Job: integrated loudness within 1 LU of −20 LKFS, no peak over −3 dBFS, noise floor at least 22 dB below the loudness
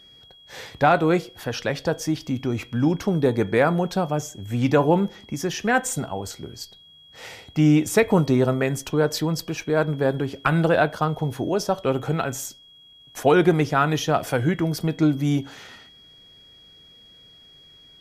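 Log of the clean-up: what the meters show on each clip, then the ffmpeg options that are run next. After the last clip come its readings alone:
interfering tone 3,300 Hz; level of the tone −48 dBFS; integrated loudness −22.5 LKFS; sample peak −6.0 dBFS; target loudness −20.0 LKFS
→ -af "bandreject=frequency=3300:width=30"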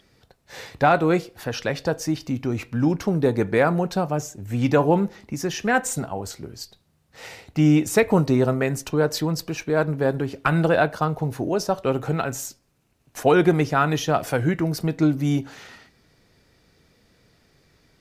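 interfering tone none found; integrated loudness −22.5 LKFS; sample peak −6.0 dBFS; target loudness −20.0 LKFS
→ -af "volume=2.5dB"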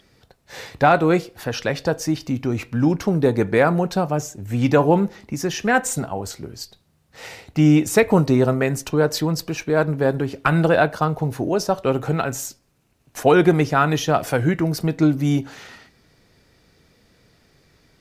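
integrated loudness −20.0 LKFS; sample peak −3.5 dBFS; background noise floor −62 dBFS

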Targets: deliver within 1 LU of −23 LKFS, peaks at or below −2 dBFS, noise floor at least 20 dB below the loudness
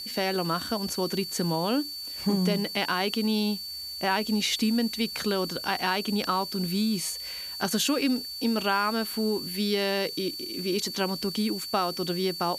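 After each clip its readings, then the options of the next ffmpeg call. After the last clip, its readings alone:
interfering tone 4,500 Hz; level of the tone −35 dBFS; background noise floor −38 dBFS; target noise floor −48 dBFS; integrated loudness −27.5 LKFS; sample peak −11.5 dBFS; target loudness −23.0 LKFS
→ -af "bandreject=frequency=4500:width=30"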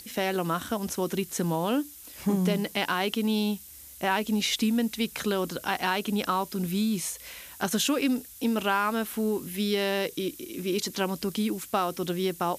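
interfering tone none found; background noise floor −47 dBFS; target noise floor −49 dBFS
→ -af "afftdn=noise_reduction=6:noise_floor=-47"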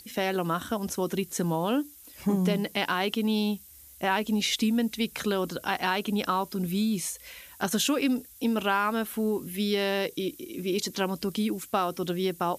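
background noise floor −51 dBFS; integrated loudness −28.5 LKFS; sample peak −12.5 dBFS; target loudness −23.0 LKFS
→ -af "volume=5.5dB"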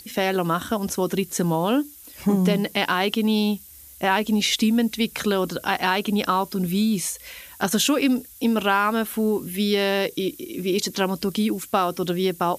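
integrated loudness −23.0 LKFS; sample peak −7.0 dBFS; background noise floor −45 dBFS

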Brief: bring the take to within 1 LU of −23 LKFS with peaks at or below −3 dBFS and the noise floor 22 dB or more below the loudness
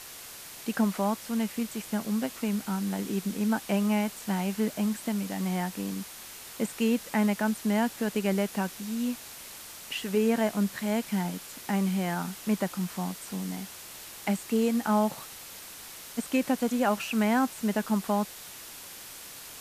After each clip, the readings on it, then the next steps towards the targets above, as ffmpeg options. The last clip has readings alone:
background noise floor −45 dBFS; target noise floor −52 dBFS; integrated loudness −29.5 LKFS; sample peak −13.5 dBFS; target loudness −23.0 LKFS
→ -af "afftdn=noise_reduction=7:noise_floor=-45"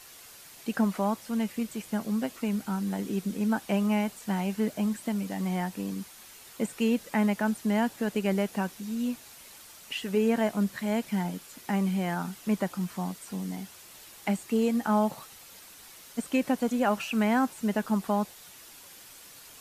background noise floor −50 dBFS; target noise floor −52 dBFS
→ -af "afftdn=noise_reduction=6:noise_floor=-50"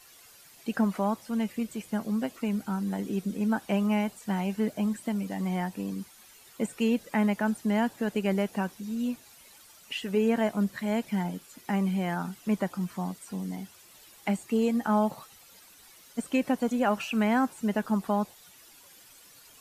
background noise floor −55 dBFS; integrated loudness −29.5 LKFS; sample peak −14.0 dBFS; target loudness −23.0 LKFS
→ -af "volume=6.5dB"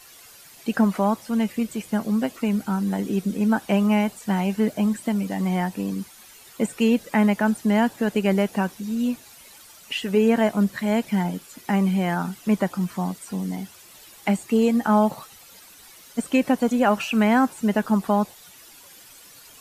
integrated loudness −23.0 LKFS; sample peak −7.5 dBFS; background noise floor −48 dBFS

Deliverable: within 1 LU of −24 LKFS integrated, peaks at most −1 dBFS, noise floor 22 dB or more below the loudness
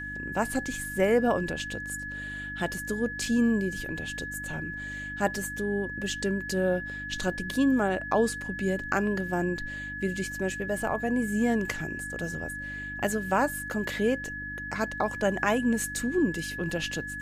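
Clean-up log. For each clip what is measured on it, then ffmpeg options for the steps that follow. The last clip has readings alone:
mains hum 50 Hz; hum harmonics up to 300 Hz; level of the hum −41 dBFS; interfering tone 1,700 Hz; level of the tone −35 dBFS; integrated loudness −29.0 LKFS; sample peak −10.5 dBFS; target loudness −24.0 LKFS
→ -af "bandreject=frequency=50:width_type=h:width=4,bandreject=frequency=100:width_type=h:width=4,bandreject=frequency=150:width_type=h:width=4,bandreject=frequency=200:width_type=h:width=4,bandreject=frequency=250:width_type=h:width=4,bandreject=frequency=300:width_type=h:width=4"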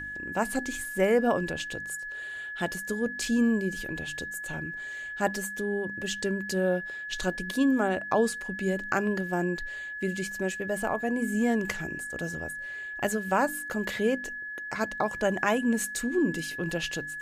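mains hum none found; interfering tone 1,700 Hz; level of the tone −35 dBFS
→ -af "bandreject=frequency=1700:width=30"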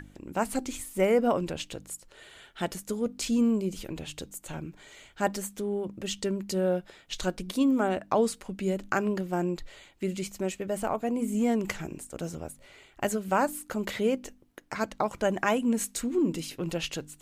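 interfering tone none found; integrated loudness −30.0 LKFS; sample peak −11.0 dBFS; target loudness −24.0 LKFS
→ -af "volume=6dB"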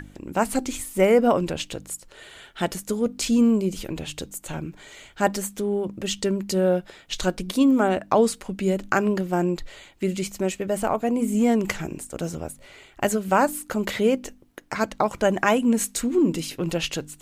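integrated loudness −24.0 LKFS; sample peak −5.0 dBFS; background noise floor −52 dBFS

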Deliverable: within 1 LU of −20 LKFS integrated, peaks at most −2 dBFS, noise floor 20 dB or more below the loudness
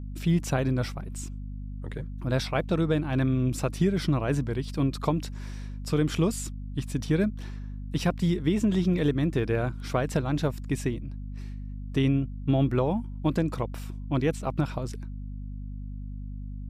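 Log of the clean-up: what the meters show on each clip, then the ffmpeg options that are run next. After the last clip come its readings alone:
mains hum 50 Hz; hum harmonics up to 250 Hz; level of the hum −34 dBFS; integrated loudness −28.0 LKFS; sample peak −12.0 dBFS; target loudness −20.0 LKFS
→ -af "bandreject=frequency=50:width_type=h:width=6,bandreject=frequency=100:width_type=h:width=6,bandreject=frequency=150:width_type=h:width=6,bandreject=frequency=200:width_type=h:width=6,bandreject=frequency=250:width_type=h:width=6"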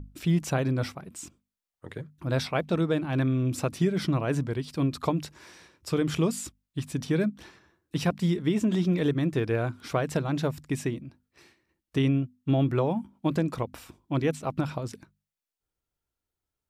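mains hum none found; integrated loudness −28.5 LKFS; sample peak −13.0 dBFS; target loudness −20.0 LKFS
→ -af "volume=8.5dB"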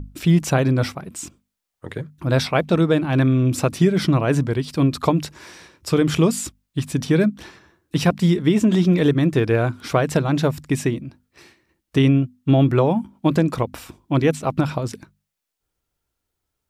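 integrated loudness −20.0 LKFS; sample peak −4.5 dBFS; background noise floor −80 dBFS

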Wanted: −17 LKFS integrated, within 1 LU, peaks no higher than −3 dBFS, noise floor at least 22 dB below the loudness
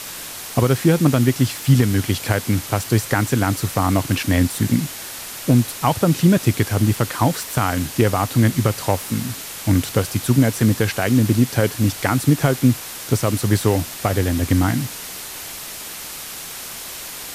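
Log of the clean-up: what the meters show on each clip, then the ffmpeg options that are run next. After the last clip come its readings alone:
background noise floor −33 dBFS; target noise floor −41 dBFS; integrated loudness −19.0 LKFS; sample peak −2.5 dBFS; target loudness −17.0 LKFS
→ -af "afftdn=noise_reduction=8:noise_floor=-33"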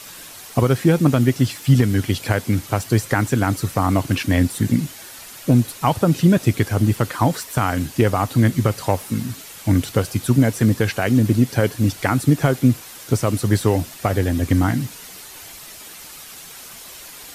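background noise floor −39 dBFS; target noise floor −42 dBFS
→ -af "afftdn=noise_reduction=6:noise_floor=-39"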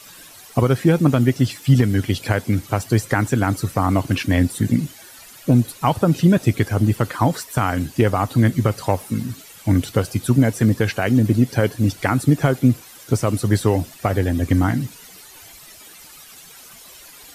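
background noise floor −43 dBFS; integrated loudness −19.5 LKFS; sample peak −3.0 dBFS; target loudness −17.0 LKFS
→ -af "volume=2.5dB,alimiter=limit=-3dB:level=0:latency=1"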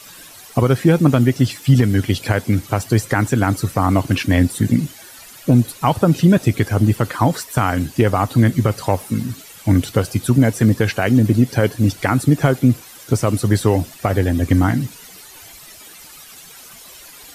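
integrated loudness −17.5 LKFS; sample peak −3.0 dBFS; background noise floor −41 dBFS

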